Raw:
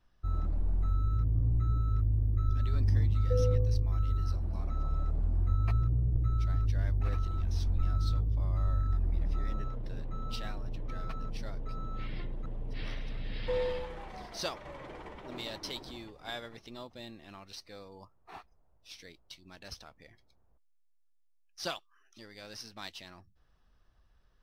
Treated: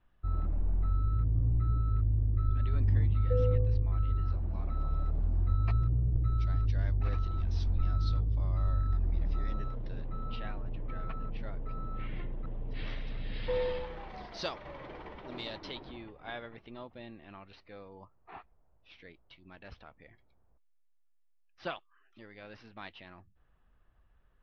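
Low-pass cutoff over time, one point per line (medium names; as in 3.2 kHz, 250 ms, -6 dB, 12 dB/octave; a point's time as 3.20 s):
low-pass 24 dB/octave
4.31 s 3.2 kHz
5.28 s 5 kHz
9.73 s 5 kHz
10.38 s 3 kHz
12.25 s 3 kHz
12.97 s 4.7 kHz
15.41 s 4.7 kHz
15.97 s 2.9 kHz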